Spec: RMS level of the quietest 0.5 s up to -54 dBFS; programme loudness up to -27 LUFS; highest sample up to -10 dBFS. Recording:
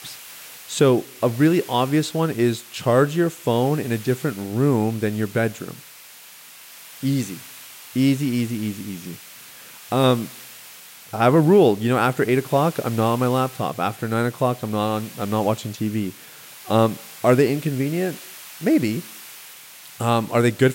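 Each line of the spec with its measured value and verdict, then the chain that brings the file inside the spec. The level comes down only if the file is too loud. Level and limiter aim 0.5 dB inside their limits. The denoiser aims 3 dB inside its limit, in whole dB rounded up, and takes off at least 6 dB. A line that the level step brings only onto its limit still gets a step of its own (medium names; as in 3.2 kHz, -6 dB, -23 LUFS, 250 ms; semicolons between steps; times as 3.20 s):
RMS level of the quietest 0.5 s -44 dBFS: fail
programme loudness -21.0 LUFS: fail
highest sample -5.0 dBFS: fail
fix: noise reduction 7 dB, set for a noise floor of -44 dBFS; trim -6.5 dB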